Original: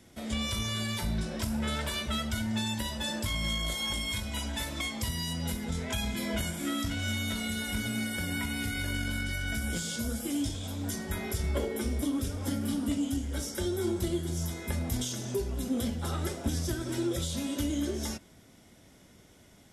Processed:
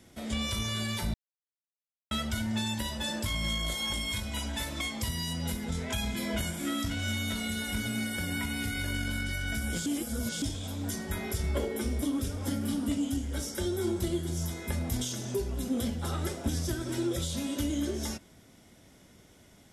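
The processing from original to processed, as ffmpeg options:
ffmpeg -i in.wav -filter_complex "[0:a]asplit=5[link_01][link_02][link_03][link_04][link_05];[link_01]atrim=end=1.14,asetpts=PTS-STARTPTS,afade=type=out:start_time=1.136:duration=0.004:curve=hsin[link_06];[link_02]atrim=start=1.14:end=2.11,asetpts=PTS-STARTPTS,volume=0[link_07];[link_03]atrim=start=2.11:end=9.862,asetpts=PTS-STARTPTS,afade=type=in:duration=0.004:curve=hsin[link_08];[link_04]atrim=start=9.858:end=10.422,asetpts=PTS-STARTPTS,areverse[link_09];[link_05]atrim=start=10.418[link_10];[link_06][link_07][link_08]concat=n=3:v=0:a=1[link_11];[link_11][link_09]acrossfade=duration=0.004:curve1=hsin:curve2=hsin[link_12];[link_12][link_10]acrossfade=duration=0.004:curve1=hsin:curve2=hsin" out.wav

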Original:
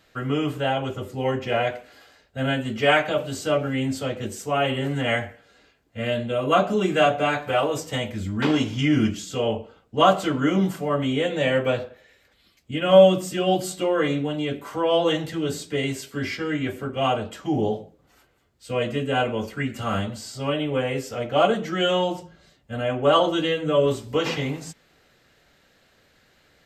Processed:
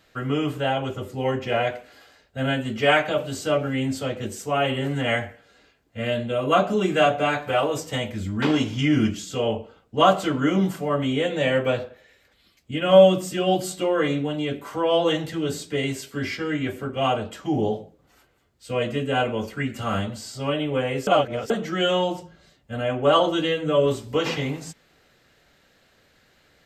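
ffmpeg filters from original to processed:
ffmpeg -i in.wav -filter_complex "[0:a]asplit=3[link_01][link_02][link_03];[link_01]atrim=end=21.072[link_04];[link_02]atrim=start=21.068:end=21.502,asetpts=PTS-STARTPTS,areverse[link_05];[link_03]atrim=start=21.498[link_06];[link_04][link_05]acrossfade=duration=0.004:curve1=hsin:curve2=hsin[link_07];[link_07][link_06]acrossfade=duration=0.004:curve1=hsin:curve2=hsin" out.wav

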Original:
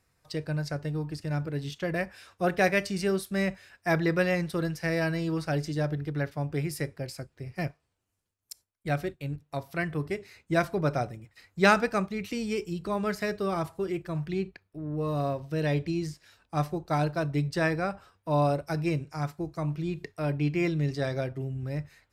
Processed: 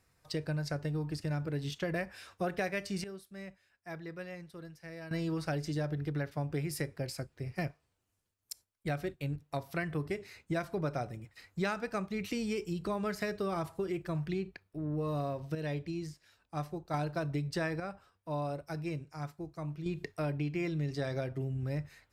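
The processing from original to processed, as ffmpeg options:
ffmpeg -i in.wav -filter_complex "[0:a]asplit=7[link_01][link_02][link_03][link_04][link_05][link_06][link_07];[link_01]atrim=end=3.04,asetpts=PTS-STARTPTS,afade=type=out:start_time=2.57:duration=0.47:curve=log:silence=0.125893[link_08];[link_02]atrim=start=3.04:end=5.11,asetpts=PTS-STARTPTS,volume=-18dB[link_09];[link_03]atrim=start=5.11:end=15.552,asetpts=PTS-STARTPTS,afade=type=in:duration=0.47:curve=log:silence=0.125893[link_10];[link_04]atrim=start=15.548:end=16.942,asetpts=PTS-STARTPTS,volume=-7.5dB[link_11];[link_05]atrim=start=16.938:end=17.802[link_12];[link_06]atrim=start=17.798:end=19.862,asetpts=PTS-STARTPTS,volume=-8.5dB[link_13];[link_07]atrim=start=19.858[link_14];[link_08][link_09][link_10]concat=n=3:v=0:a=1[link_15];[link_15][link_11]acrossfade=duration=0.004:curve1=hsin:curve2=hsin[link_16];[link_16][link_12]acrossfade=duration=0.004:curve1=hsin:curve2=hsin[link_17];[link_17][link_13]acrossfade=duration=0.004:curve1=hsin:curve2=hsin[link_18];[link_18][link_14]acrossfade=duration=0.004:curve1=hsin:curve2=hsin,acompressor=threshold=-31dB:ratio=6" out.wav

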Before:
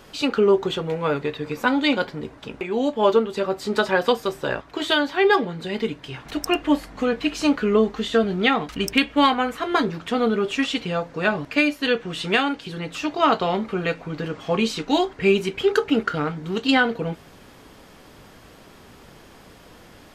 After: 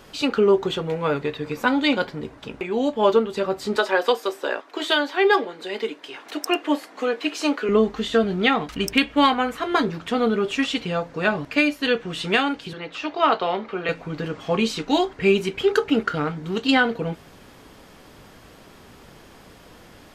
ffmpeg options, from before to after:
ffmpeg -i in.wav -filter_complex "[0:a]asettb=1/sr,asplit=3[link_01][link_02][link_03];[link_01]atrim=end=3.764[link_04];[link_02]atrim=start=3.76:end=7.69,asetpts=PTS-STARTPTS,afade=type=in:duration=0.004:curve=qsin,afade=type=out:start_time=3.926:duration=0.004:curve=qsin,highpass=frequency=300:width=0.5412,highpass=frequency=300:width=1.3066[link_05];[link_03]atrim=start=7.686[link_06];[link_04][link_05]acrossfade=duration=0.004:curve1=hsin:curve2=qsin[link_07];[link_07][link_06]acrossfade=duration=0.004:curve1=qsin:curve2=hsin,asettb=1/sr,asplit=3[link_08][link_09][link_10];[link_08]atrim=end=12.734[link_11];[link_09]atrim=start=12.73:end=13.89,asetpts=PTS-STARTPTS,afade=type=in:duration=0.004:curve=qsin,afade=type=out:start_time=1.156:duration=0.004:curve=qsin,acrossover=split=310 5200:gain=0.251 1 0.126[link_12][link_13][link_14];[link_12][link_13][link_14]amix=inputs=3:normalize=0[link_15];[link_10]atrim=start=13.886[link_16];[link_11][link_15]acrossfade=duration=0.004:curve1=hsin:curve2=qsin[link_17];[link_17][link_16]acrossfade=duration=0.004:curve1=qsin:curve2=hsin" out.wav

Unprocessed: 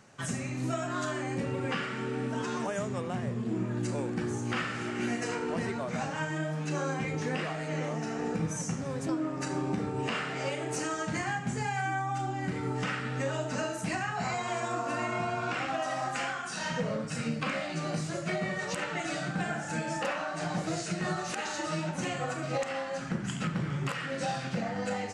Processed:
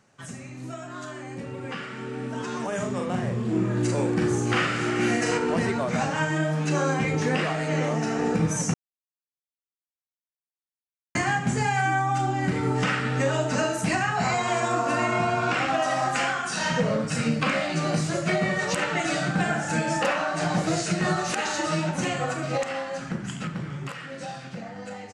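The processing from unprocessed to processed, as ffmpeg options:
ffmpeg -i in.wav -filter_complex "[0:a]asplit=3[link_01][link_02][link_03];[link_01]afade=type=out:start_time=2.71:duration=0.02[link_04];[link_02]asplit=2[link_05][link_06];[link_06]adelay=44,volume=-4.5dB[link_07];[link_05][link_07]amix=inputs=2:normalize=0,afade=type=in:start_time=2.71:duration=0.02,afade=type=out:start_time=5.37:duration=0.02[link_08];[link_03]afade=type=in:start_time=5.37:duration=0.02[link_09];[link_04][link_08][link_09]amix=inputs=3:normalize=0,asplit=3[link_10][link_11][link_12];[link_10]atrim=end=8.74,asetpts=PTS-STARTPTS,afade=type=out:start_time=8.736:duration=0.004:curve=hsin[link_13];[link_11]atrim=start=8.74:end=11.15,asetpts=PTS-STARTPTS,volume=0[link_14];[link_12]atrim=start=11.15,asetpts=PTS-STARTPTS,afade=type=in:duration=0.004:curve=hsin[link_15];[link_13][link_14][link_15]concat=n=3:v=0:a=1,dynaudnorm=framelen=270:gausssize=21:maxgain=13dB,volume=-5dB" out.wav

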